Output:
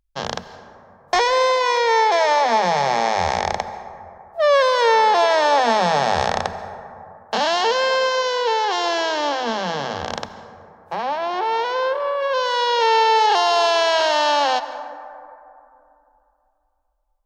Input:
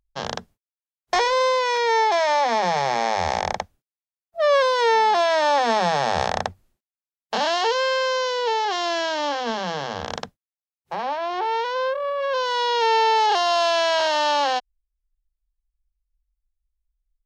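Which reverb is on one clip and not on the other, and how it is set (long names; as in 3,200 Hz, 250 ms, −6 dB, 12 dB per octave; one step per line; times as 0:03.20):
dense smooth reverb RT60 2.8 s, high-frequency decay 0.3×, pre-delay 120 ms, DRR 11.5 dB
level +2.5 dB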